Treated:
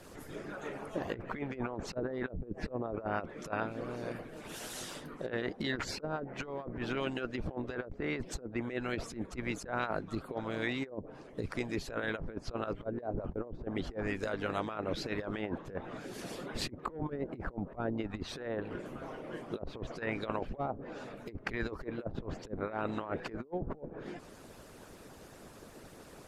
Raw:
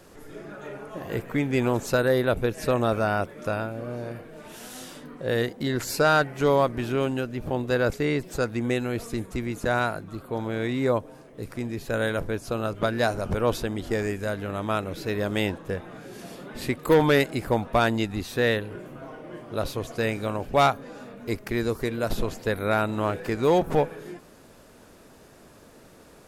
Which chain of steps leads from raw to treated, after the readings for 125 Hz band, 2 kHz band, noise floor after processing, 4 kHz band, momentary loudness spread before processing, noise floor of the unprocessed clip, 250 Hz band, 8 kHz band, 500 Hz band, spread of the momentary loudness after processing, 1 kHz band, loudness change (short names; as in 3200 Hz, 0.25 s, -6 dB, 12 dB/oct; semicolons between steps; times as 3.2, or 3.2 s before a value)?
-12.5 dB, -10.5 dB, -53 dBFS, -10.0 dB, 18 LU, -51 dBFS, -10.0 dB, -9.5 dB, -13.5 dB, 10 LU, -12.5 dB, -12.5 dB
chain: harmonic-percussive split harmonic -16 dB; treble ducked by the level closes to 430 Hz, closed at -23.5 dBFS; negative-ratio compressor -36 dBFS, ratio -0.5